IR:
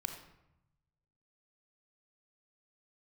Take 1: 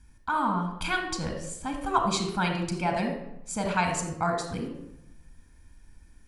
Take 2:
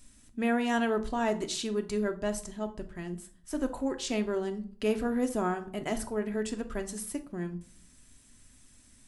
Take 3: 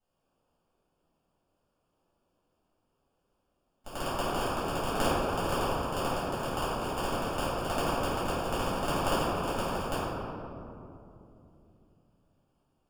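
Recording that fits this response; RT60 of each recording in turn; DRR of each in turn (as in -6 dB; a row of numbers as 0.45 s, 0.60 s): 1; 0.85 s, 0.50 s, 2.9 s; 4.5 dB, 5.5 dB, -14.0 dB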